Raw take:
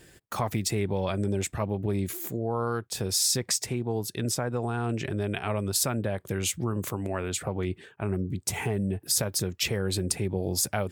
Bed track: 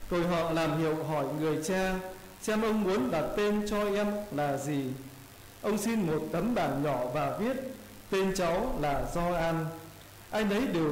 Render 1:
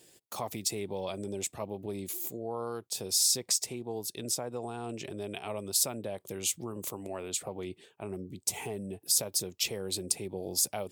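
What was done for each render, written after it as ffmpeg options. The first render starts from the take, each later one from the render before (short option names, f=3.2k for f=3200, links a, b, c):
-af "highpass=f=640:p=1,equalizer=f=1.6k:t=o:w=1.1:g=-14.5"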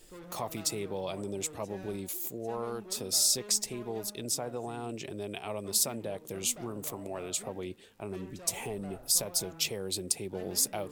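-filter_complex "[1:a]volume=-19.5dB[a];[0:a][a]amix=inputs=2:normalize=0"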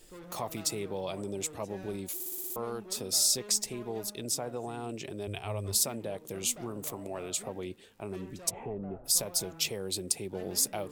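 -filter_complex "[0:a]asettb=1/sr,asplit=3[a][b][c];[a]atrim=end=5.274[d];[b]atrim=start=5.27:end=5.79,asetpts=PTS-STARTPTS,afade=t=in:d=0.004:c=qsin,afade=t=out:st=0.516:d=0.004:c=qsin,lowshelf=f=140:t=q:w=1.5:g=10.5[e];[c]atrim=start=5.786[f];[d][e]acrossfade=d=0.004:c1=hsin:c2=qsin[g];[g][f]acrossfade=d=0.004:c1=qsin:c2=hsin,asplit=3[h][i][j];[h]afade=t=out:st=8.49:d=0.02[k];[i]lowpass=1.1k,afade=t=in:st=8.49:d=0.02,afade=t=out:st=9.04:d=0.02[l];[j]afade=t=in:st=9.04:d=0.02[m];[k][l][m]amix=inputs=3:normalize=0,asplit=8[n][o][p][q][r][s][t][u];[n]atrim=end=2.202[v];[o]atrim=start=2.138:end=2.202[w];[p]atrim=start=2.138:end=2.202[x];[q]atrim=start=2.138:end=2.202[y];[r]atrim=start=2.138:end=2.202[z];[s]atrim=start=2.138:end=2.202[aa];[t]atrim=start=2.138:end=2.202[ab];[u]atrim=start=2.558[ac];[v][w]acrossfade=d=0.004:c1=hsin:c2=hsin[ad];[ad][x]acrossfade=d=0.004:c1=hsin:c2=hsin[ae];[ae][y]acrossfade=d=0.004:c1=hsin:c2=hsin[af];[af][z]acrossfade=d=0.004:c1=hsin:c2=hsin[ag];[ag][aa]acrossfade=d=0.004:c1=hsin:c2=hsin[ah];[ah][ab]acrossfade=d=0.004:c1=hsin:c2=hsin[ai];[ai][ac]acrossfade=d=0.004:c1=hsin:c2=hsin"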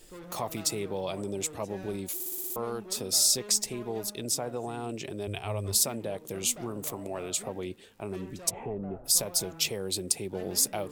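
-af "volume=2.5dB"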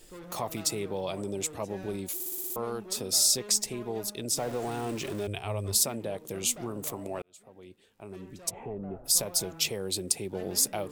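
-filter_complex "[0:a]asettb=1/sr,asplit=3[a][b][c];[a]atrim=end=4.374[d];[b]atrim=start=4.37:end=5.27,asetpts=PTS-STARTPTS,afade=t=in:d=0.004:c=qsin,afade=t=out:st=0.896:d=0.004:c=qsin,aeval=exprs='val(0)+0.5*0.0141*sgn(val(0))':c=same[e];[c]atrim=start=5.266[f];[d][e]acrossfade=d=0.004:c1=hsin:c2=qsin[g];[g][f]acrossfade=d=0.004:c1=qsin:c2=hsin,asplit=2[h][i];[h]atrim=end=7.22,asetpts=PTS-STARTPTS,afade=t=out:st=7.216:d=0.004:c=hsin[j];[i]atrim=start=7.22,asetpts=PTS-STARTPTS,afade=t=in:d=1.98[k];[j][k]concat=n=2:v=0:a=1"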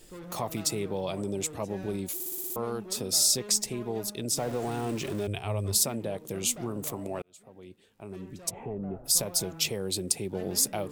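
-af "equalizer=f=150:w=0.69:g=4"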